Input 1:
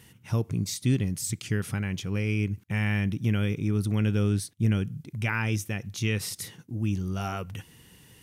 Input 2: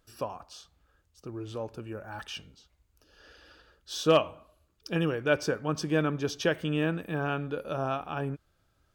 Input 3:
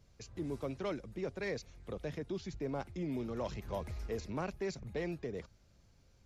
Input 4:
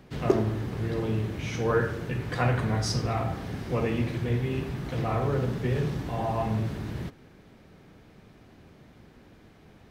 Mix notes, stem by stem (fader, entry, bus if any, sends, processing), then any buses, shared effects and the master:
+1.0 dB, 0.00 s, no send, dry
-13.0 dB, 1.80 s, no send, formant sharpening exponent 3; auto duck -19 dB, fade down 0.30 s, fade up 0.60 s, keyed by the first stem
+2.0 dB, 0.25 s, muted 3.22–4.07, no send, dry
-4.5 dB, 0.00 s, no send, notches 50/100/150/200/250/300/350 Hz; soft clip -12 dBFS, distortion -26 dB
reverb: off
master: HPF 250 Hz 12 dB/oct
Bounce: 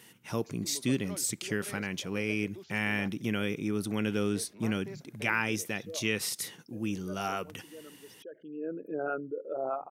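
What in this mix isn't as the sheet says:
stem 2 -13.0 dB -> -2.0 dB; stem 3 +2.0 dB -> -6.5 dB; stem 4: muted

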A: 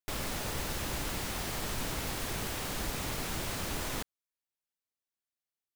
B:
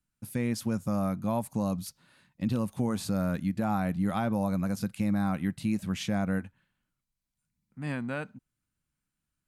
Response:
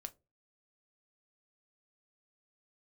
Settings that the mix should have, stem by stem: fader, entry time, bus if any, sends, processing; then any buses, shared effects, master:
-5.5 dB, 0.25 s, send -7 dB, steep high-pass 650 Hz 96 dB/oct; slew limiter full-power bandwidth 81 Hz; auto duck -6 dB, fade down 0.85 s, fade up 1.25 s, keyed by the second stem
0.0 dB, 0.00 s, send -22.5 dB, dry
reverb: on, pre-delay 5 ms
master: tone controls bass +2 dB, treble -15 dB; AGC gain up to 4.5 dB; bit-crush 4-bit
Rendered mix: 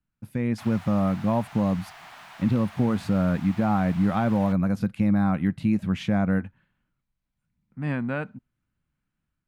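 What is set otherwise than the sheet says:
stem A: entry 0.25 s -> 0.50 s; master: missing bit-crush 4-bit

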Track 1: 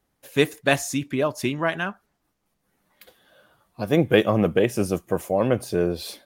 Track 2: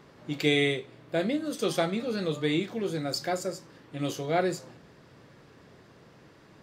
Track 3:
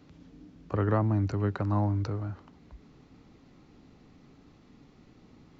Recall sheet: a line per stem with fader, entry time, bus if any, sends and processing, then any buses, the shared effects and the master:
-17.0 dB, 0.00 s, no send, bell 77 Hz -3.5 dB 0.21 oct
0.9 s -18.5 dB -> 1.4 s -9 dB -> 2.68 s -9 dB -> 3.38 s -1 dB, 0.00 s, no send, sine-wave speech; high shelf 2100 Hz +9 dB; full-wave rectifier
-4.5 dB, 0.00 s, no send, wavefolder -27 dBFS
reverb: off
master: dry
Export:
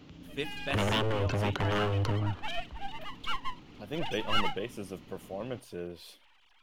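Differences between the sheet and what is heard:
stem 3 -4.5 dB -> +3.5 dB; master: extra bell 3000 Hz +9 dB 0.45 oct

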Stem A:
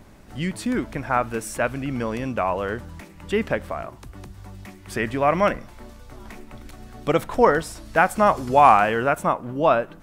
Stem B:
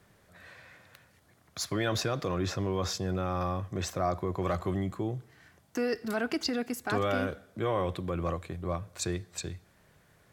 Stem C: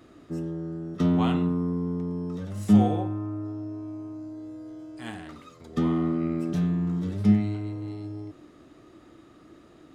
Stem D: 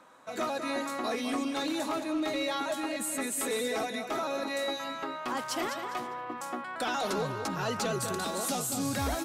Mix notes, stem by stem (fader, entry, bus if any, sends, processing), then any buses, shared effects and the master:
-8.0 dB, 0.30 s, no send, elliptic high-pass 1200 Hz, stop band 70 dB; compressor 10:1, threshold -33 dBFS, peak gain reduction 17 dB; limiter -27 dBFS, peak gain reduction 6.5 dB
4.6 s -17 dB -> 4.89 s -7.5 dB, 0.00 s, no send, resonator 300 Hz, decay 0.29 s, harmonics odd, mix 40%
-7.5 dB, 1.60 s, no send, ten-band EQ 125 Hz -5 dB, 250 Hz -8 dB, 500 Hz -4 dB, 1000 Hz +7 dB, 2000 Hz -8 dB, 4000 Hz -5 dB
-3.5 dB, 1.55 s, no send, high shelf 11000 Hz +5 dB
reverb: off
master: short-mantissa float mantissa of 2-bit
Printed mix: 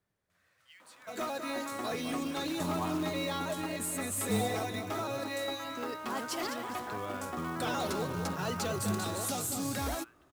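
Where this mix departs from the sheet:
stem A -8.0 dB -> -18.0 dB; stem D: entry 1.55 s -> 0.80 s

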